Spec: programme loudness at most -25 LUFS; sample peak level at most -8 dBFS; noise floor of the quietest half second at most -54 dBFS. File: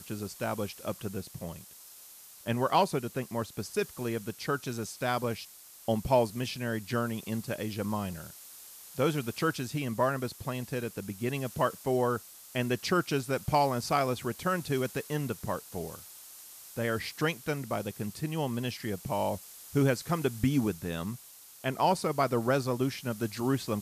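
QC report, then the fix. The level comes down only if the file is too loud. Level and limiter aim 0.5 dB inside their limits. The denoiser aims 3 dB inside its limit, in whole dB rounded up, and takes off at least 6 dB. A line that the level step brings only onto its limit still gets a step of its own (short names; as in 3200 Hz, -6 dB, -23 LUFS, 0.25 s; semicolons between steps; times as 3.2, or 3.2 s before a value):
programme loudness -32.0 LUFS: OK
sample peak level -13.5 dBFS: OK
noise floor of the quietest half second -51 dBFS: fail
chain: denoiser 6 dB, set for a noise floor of -51 dBFS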